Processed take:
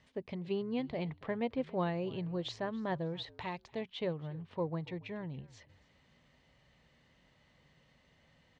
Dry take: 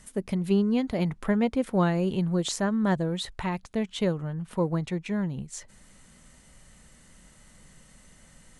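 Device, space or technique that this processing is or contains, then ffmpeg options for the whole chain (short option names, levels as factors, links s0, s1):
frequency-shifting delay pedal into a guitar cabinet: -filter_complex "[0:a]asettb=1/sr,asplit=3[s0][s1][s2];[s0]atrim=end=3.274[s3];[s1]atrim=start=3.27:end=3.81,asetpts=PTS-STARTPTS,afade=t=in:d=0.004:c=qsin,afade=t=out:st=0.536:d=0.004:c=qsin,bass=f=250:g=-2,treble=f=4000:g=11[s4];[s2]atrim=start=3.806[s5];[s3][s4]acrossfade=d=0.004:c1=hsin:c2=qsin[s6];[s6][s5]acrossfade=d=0.004:c1=qsin:c2=hsin,asplit=3[s7][s8][s9];[s8]adelay=281,afreqshift=-57,volume=0.0794[s10];[s9]adelay=562,afreqshift=-114,volume=0.0269[s11];[s7][s10][s11]amix=inputs=3:normalize=0,highpass=86,equalizer=f=200:t=q:w=4:g=-10,equalizer=f=330:t=q:w=4:g=-3,equalizer=f=1400:t=q:w=4:g=-8,lowpass=f=4200:w=0.5412,lowpass=f=4200:w=1.3066,volume=0.447"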